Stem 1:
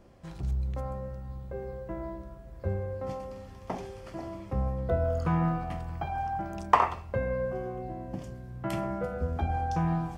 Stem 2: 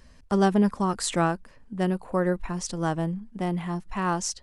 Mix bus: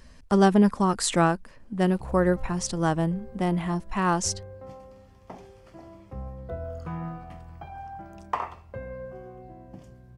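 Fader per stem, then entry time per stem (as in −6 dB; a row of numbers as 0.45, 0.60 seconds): −7.5, +2.5 decibels; 1.60, 0.00 seconds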